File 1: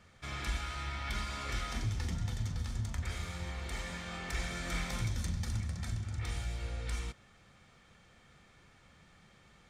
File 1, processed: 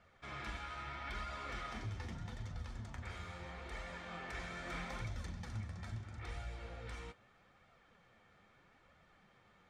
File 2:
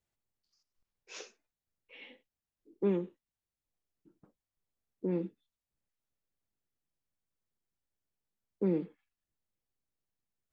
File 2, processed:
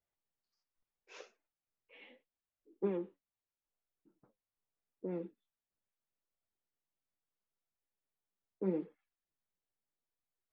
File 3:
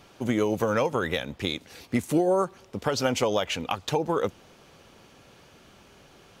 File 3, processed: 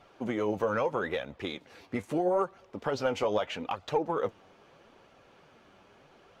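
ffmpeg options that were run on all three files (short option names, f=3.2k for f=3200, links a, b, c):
-filter_complex "[0:a]flanger=delay=1.4:depth=9.3:regen=51:speed=0.78:shape=sinusoidal,asplit=2[a][b];[b]highpass=f=720:p=1,volume=10dB,asoftclip=type=tanh:threshold=-12.5dB[c];[a][c]amix=inputs=2:normalize=0,lowpass=f=1k:p=1,volume=-6dB"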